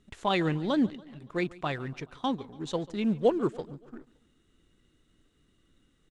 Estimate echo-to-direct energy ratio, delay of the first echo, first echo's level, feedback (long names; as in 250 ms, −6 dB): −19.5 dB, 142 ms, −21.0 dB, 56%